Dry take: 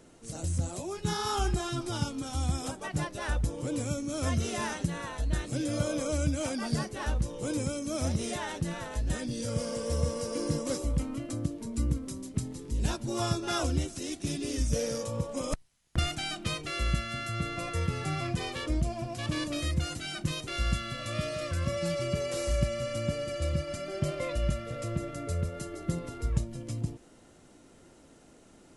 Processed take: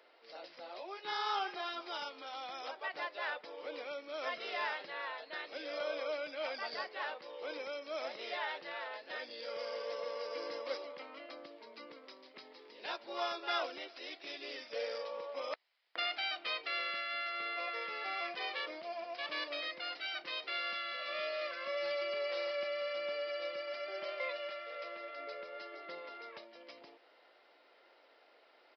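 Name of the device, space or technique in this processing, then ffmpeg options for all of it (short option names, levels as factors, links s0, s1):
musical greeting card: -filter_complex "[0:a]asettb=1/sr,asplit=3[s0][s1][s2];[s0]atrim=end=24.044[s3];[s1]atrim=start=24.04:end=25.19,asetpts=PTS-STARTPTS,afade=t=in:d=0.004:c=qsin,afade=t=out:st=1.146:d=0.004:c=qsin,highpass=f=410:p=1[s4];[s2]atrim=start=25.186[s5];[s3][s4]acrossfade=d=0.004:c1=hsin:c2=qsin[s6];[s6][s5]acrossfade=d=0.004:c1=qsin:c2=hsin,aresample=11025,aresample=44100,highpass=f=510:w=0.5412,highpass=f=510:w=1.3066,equalizer=f=2100:t=o:w=0.44:g=5,volume=0.75"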